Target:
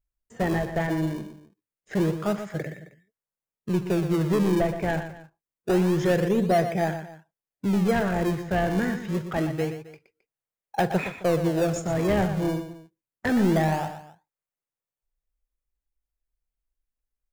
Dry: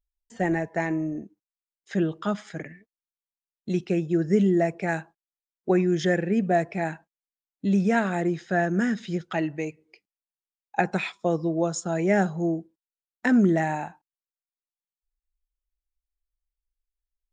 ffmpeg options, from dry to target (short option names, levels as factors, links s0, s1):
-filter_complex "[0:a]equalizer=f=125:t=o:w=1:g=9,equalizer=f=250:t=o:w=1:g=-6,equalizer=f=500:t=o:w=1:g=7,equalizer=f=2000:t=o:w=1:g=3,equalizer=f=4000:t=o:w=1:g=-10,asoftclip=type=tanh:threshold=0.141,asplit=2[s0][s1];[s1]acrusher=samples=38:mix=1:aa=0.000001:lfo=1:lforange=60.8:lforate=0.26,volume=0.398[s2];[s0][s2]amix=inputs=2:normalize=0,aecho=1:1:44|120|266:0.158|0.316|0.112,volume=0.841"